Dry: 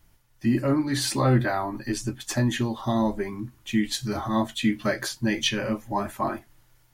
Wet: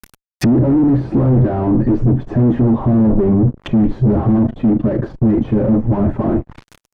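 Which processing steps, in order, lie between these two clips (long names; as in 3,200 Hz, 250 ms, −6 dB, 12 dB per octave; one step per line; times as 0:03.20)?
0:04.38–0:05.73: amplitude modulation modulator 26 Hz, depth 60%
fuzz pedal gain 43 dB, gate −52 dBFS
treble cut that deepens with the level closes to 380 Hz, closed at −17 dBFS
level +4.5 dB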